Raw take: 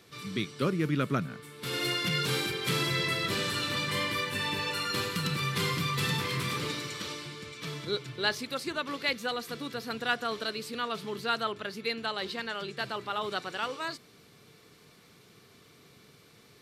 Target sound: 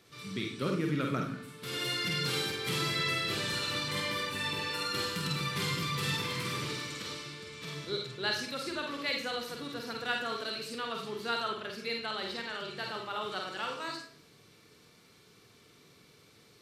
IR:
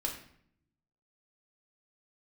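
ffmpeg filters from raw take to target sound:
-filter_complex "[0:a]asplit=2[s0][s1];[s1]highshelf=f=4300:g=9.5[s2];[1:a]atrim=start_sample=2205,lowpass=8100,adelay=47[s3];[s2][s3]afir=irnorm=-1:irlink=0,volume=0.531[s4];[s0][s4]amix=inputs=2:normalize=0,volume=0.562"

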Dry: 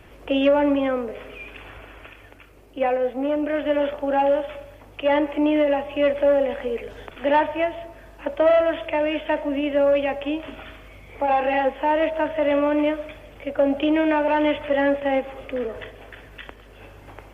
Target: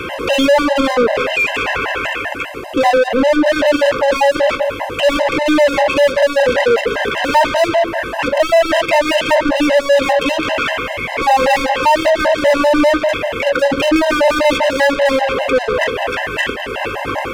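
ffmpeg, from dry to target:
-filter_complex "[0:a]asplit=2[s0][s1];[s1]highpass=f=720:p=1,volume=63.1,asoftclip=type=tanh:threshold=0.398[s2];[s0][s2]amix=inputs=2:normalize=0,lowpass=f=2800:p=1,volume=0.501,afftfilt=real='re*gt(sin(2*PI*5.1*pts/sr)*(1-2*mod(floor(b*sr/1024/530),2)),0)':imag='im*gt(sin(2*PI*5.1*pts/sr)*(1-2*mod(floor(b*sr/1024/530),2)),0)':win_size=1024:overlap=0.75,volume=1.68"

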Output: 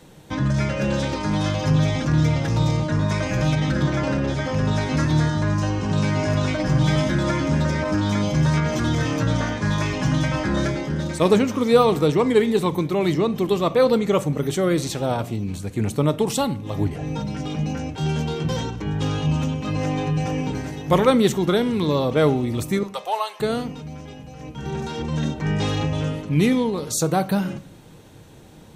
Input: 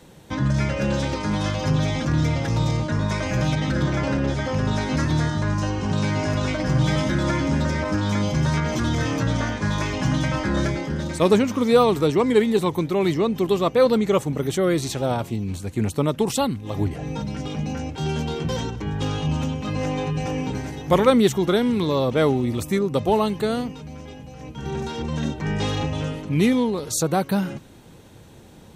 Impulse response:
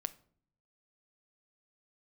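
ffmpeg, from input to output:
-filter_complex "[0:a]asettb=1/sr,asplit=3[s0][s1][s2];[s0]atrim=end=22.834[s3];[s1]atrim=start=22.83:end=23.4,asetpts=PTS-STARTPTS,afade=t=in:d=0.004:c=qsin,afade=t=out:st=0.566:d=0.004:c=qsin,highpass=f=670:w=0.5412,highpass=f=670:w=1.3066[s4];[s2]atrim=start=23.396[s5];[s3][s4]acrossfade=d=0.004:c1=hsin:c2=qsin[s6];[s6][s5]acrossfade=d=0.004:c1=qsin:c2=hsin[s7];[1:a]atrim=start_sample=2205,afade=t=out:st=0.45:d=0.01,atrim=end_sample=20286[s8];[s7][s8]afir=irnorm=-1:irlink=0,volume=1.19"

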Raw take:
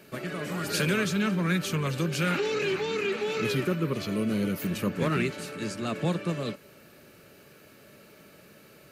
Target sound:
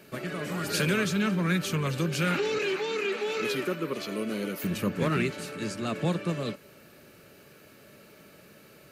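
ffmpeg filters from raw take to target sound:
-filter_complex "[0:a]asettb=1/sr,asplit=3[s0][s1][s2];[s0]atrim=end=2.584[s3];[s1]atrim=start=2.58:end=4.64,asetpts=PTS-STARTPTS,afade=t=in:d=0.004:c=qsin,afade=t=out:st=2.056:d=0.004:c=qsin,highpass=280[s4];[s2]atrim=start=4.636[s5];[s3][s4]acrossfade=d=0.004:c1=hsin:c2=qsin[s6];[s6][s5]acrossfade=d=0.004:c1=qsin:c2=hsin"

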